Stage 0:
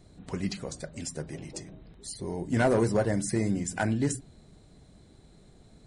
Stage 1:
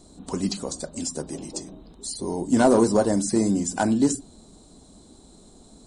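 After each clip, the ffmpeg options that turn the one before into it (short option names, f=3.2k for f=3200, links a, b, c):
-filter_complex "[0:a]acrossover=split=5500[a][b];[b]acompressor=threshold=-47dB:ratio=4:attack=1:release=60[c];[a][c]amix=inputs=2:normalize=0,equalizer=f=125:t=o:w=1:g=-10,equalizer=f=250:t=o:w=1:g=8,equalizer=f=1k:t=o:w=1:g=7,equalizer=f=2k:t=o:w=1:g=-11,equalizer=f=4k:t=o:w=1:g=4,equalizer=f=8k:t=o:w=1:g=12,volume=3.5dB"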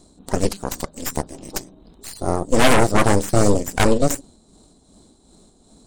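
-af "tremolo=f=2.6:d=0.48,aeval=exprs='0.447*(cos(1*acos(clip(val(0)/0.447,-1,1)))-cos(1*PI/2))+0.224*(cos(8*acos(clip(val(0)/0.447,-1,1)))-cos(8*PI/2))':c=same"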